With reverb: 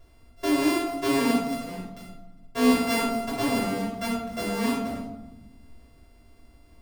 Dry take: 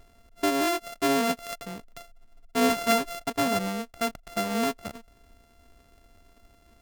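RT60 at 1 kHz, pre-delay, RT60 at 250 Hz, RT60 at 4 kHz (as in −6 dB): 0.90 s, 7 ms, 1.7 s, 0.65 s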